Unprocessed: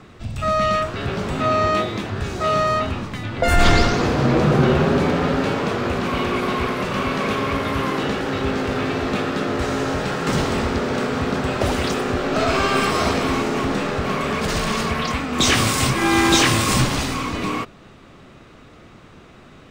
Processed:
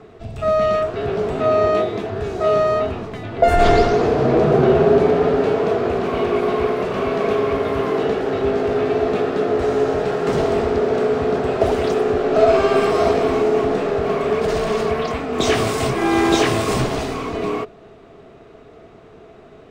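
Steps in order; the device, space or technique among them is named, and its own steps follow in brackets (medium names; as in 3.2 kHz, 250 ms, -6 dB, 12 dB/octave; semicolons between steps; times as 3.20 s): inside a helmet (treble shelf 4 kHz -6 dB; small resonant body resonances 430/660 Hz, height 15 dB, ringing for 45 ms); trim -3.5 dB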